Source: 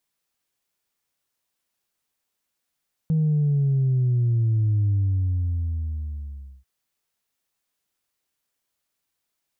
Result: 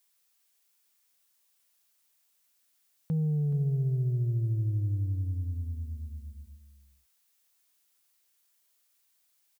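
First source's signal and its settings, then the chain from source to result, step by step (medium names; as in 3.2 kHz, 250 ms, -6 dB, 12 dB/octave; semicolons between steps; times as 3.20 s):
sub drop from 160 Hz, over 3.54 s, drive 0 dB, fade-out 1.76 s, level -18 dB
tilt EQ +2.5 dB/octave; on a send: delay 425 ms -11.5 dB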